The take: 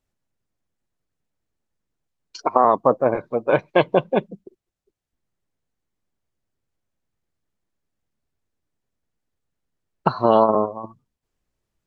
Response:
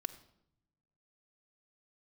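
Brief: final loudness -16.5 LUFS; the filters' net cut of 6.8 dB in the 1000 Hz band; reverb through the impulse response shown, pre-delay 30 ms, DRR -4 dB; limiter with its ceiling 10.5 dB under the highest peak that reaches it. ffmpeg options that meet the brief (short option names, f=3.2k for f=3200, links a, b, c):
-filter_complex "[0:a]equalizer=f=1k:t=o:g=-9,alimiter=limit=-15.5dB:level=0:latency=1,asplit=2[a][b];[1:a]atrim=start_sample=2205,adelay=30[c];[b][c]afir=irnorm=-1:irlink=0,volume=5.5dB[d];[a][d]amix=inputs=2:normalize=0,volume=8dB"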